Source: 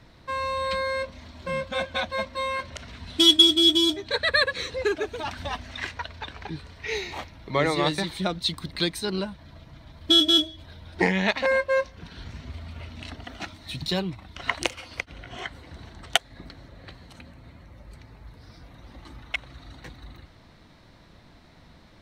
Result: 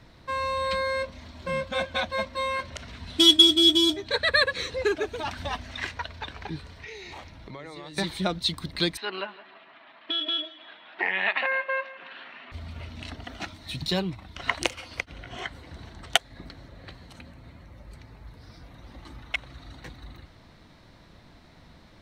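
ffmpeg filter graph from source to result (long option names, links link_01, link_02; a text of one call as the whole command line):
ffmpeg -i in.wav -filter_complex "[0:a]asettb=1/sr,asplit=3[link_01][link_02][link_03];[link_01]atrim=end=6.804[link_04];[link_02]atrim=start=6.8:end=7.97,asetpts=PTS-STARTPTS,afade=type=in:duration=0.004:curve=qsin,afade=type=out:start_time=1.166:duration=0.004:curve=qsin,equalizer=frequency=13000:width_type=o:width=0.3:gain=-7.5,acompressor=threshold=-37dB:ratio=12:attack=3.2:release=140:knee=1:detection=peak[link_05];[link_03]atrim=start=7.966[link_06];[link_04][link_05]acrossfade=duration=0.004:curve1=hsin:curve2=qsin[link_07];[link_07][link_06]acrossfade=duration=0.004:curve1=qsin:curve2=hsin,asettb=1/sr,asplit=3[link_08][link_09][link_10];[link_08]atrim=end=8.974[link_11];[link_09]atrim=start=8.97:end=12.52,asetpts=PTS-STARTPTS,afade=type=in:duration=0.004:curve=qsin,afade=type=out:start_time=3.546:duration=0.004:curve=qsin,acompressor=threshold=-23dB:ratio=10:attack=3.2:release=140:knee=1:detection=peak,highpass=frequency=320:width=0.5412,highpass=frequency=320:width=1.3066,equalizer=frequency=330:width_type=q:width=4:gain=-7,equalizer=frequency=490:width_type=q:width=4:gain=-8,equalizer=frequency=740:width_type=q:width=4:gain=4,equalizer=frequency=1200:width_type=q:width=4:gain=7,equalizer=frequency=1800:width_type=q:width=4:gain=7,equalizer=frequency=2700:width_type=q:width=4:gain=9,lowpass=frequency=3400:width=0.5412,lowpass=frequency=3400:width=1.3066,aecho=1:1:162|324|486|648:0.126|0.0541|0.0233|0.01,atrim=end_sample=156555[link_12];[link_10]atrim=start=12.516[link_13];[link_11][link_12]acrossfade=duration=0.004:curve1=hsin:curve2=qsin[link_14];[link_14][link_13]acrossfade=duration=0.004:curve1=qsin:curve2=hsin" out.wav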